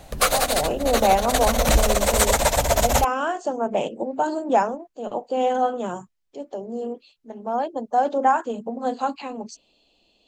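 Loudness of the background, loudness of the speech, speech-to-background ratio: -21.0 LUFS, -25.0 LUFS, -4.0 dB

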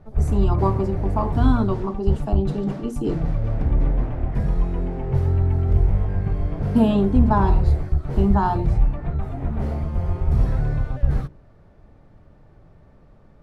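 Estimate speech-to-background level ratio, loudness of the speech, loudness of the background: 0.5 dB, -23.5 LUFS, -24.0 LUFS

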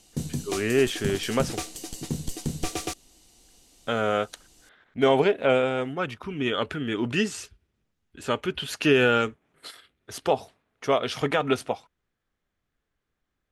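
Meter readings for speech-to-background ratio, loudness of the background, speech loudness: 8.0 dB, -33.5 LUFS, -25.5 LUFS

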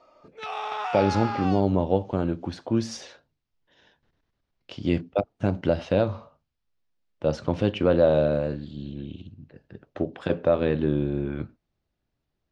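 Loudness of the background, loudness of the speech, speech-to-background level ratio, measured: -31.5 LUFS, -25.5 LUFS, 6.0 dB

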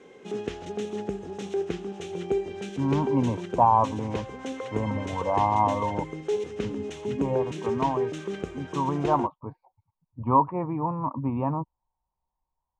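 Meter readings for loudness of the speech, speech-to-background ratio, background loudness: -27.0 LUFS, 6.0 dB, -33.0 LUFS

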